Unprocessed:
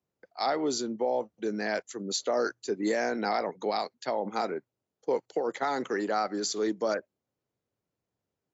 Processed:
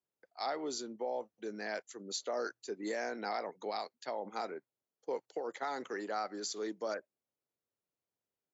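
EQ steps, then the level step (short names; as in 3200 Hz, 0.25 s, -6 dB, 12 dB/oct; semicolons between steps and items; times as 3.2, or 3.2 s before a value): low shelf 200 Hz -11 dB; -7.5 dB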